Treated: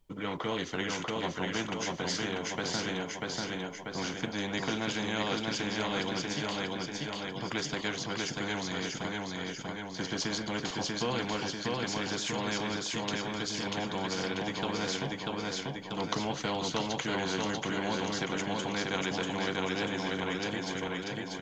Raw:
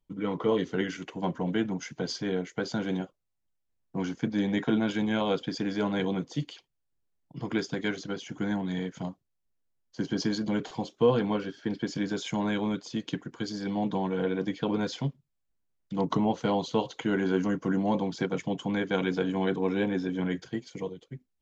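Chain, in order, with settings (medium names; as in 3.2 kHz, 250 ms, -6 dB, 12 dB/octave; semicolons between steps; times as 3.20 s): feedback delay 640 ms, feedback 45%, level -3.5 dB; spectrum-flattening compressor 2:1; trim -2 dB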